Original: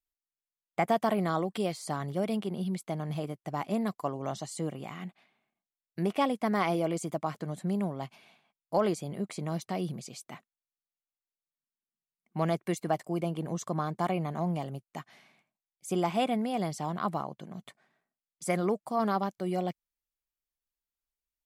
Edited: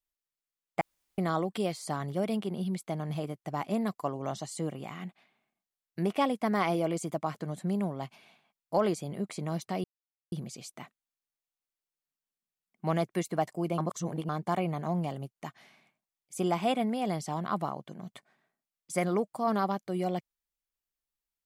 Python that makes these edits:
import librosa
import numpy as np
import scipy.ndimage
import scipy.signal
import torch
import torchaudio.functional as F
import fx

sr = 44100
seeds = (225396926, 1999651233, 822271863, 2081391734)

y = fx.edit(x, sr, fx.room_tone_fill(start_s=0.81, length_s=0.37),
    fx.insert_silence(at_s=9.84, length_s=0.48),
    fx.reverse_span(start_s=13.3, length_s=0.51), tone=tone)